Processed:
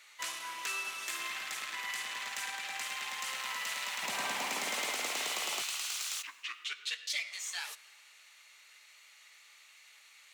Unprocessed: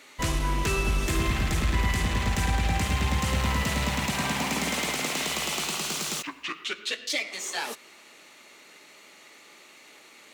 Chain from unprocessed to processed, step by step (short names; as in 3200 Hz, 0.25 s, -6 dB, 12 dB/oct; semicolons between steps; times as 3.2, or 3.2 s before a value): HPF 1200 Hz 12 dB/oct, from 4.03 s 510 Hz, from 5.62 s 1500 Hz; plate-style reverb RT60 2 s, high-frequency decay 0.75×, DRR 19 dB; gain -5.5 dB